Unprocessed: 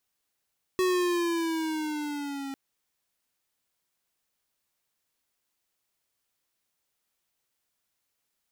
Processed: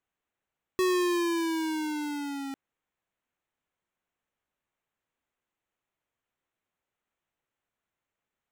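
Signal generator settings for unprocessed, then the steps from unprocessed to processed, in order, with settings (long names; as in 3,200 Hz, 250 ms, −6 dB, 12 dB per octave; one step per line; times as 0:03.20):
pitch glide with a swell square, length 1.75 s, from 372 Hz, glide −5.5 semitones, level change −12 dB, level −24 dB
adaptive Wiener filter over 9 samples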